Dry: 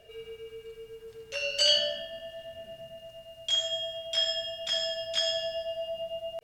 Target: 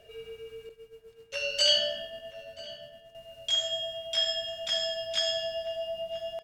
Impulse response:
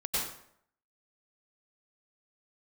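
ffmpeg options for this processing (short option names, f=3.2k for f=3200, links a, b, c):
-filter_complex "[0:a]asettb=1/sr,asplit=3[a][b][c];[a]atrim=end=0.694[d];[b]atrim=start=0.69:end=3.15,asetpts=PTS-STARTPTS,afade=t=in:d=0.004:c=qsin,afade=t=out:st=2.456:d=0.004:c=qsin,agate=range=-33dB:threshold=-39dB:ratio=3:detection=peak[e];[c]atrim=start=3.146[f];[d][e]acrossfade=d=0.004:c1=hsin:c2=qsin[g];[g][f]acrossfade=d=0.004:c1=qsin:c2=hsin,asplit=2[h][i];[i]adelay=980,lowpass=f=2.2k:p=1,volume=-16.5dB,asplit=2[j][k];[k]adelay=980,lowpass=f=2.2k:p=1,volume=0.42,asplit=2[l][m];[m]adelay=980,lowpass=f=2.2k:p=1,volume=0.42,asplit=2[n][o];[o]adelay=980,lowpass=f=2.2k:p=1,volume=0.42[p];[h][j][l][n][p]amix=inputs=5:normalize=0"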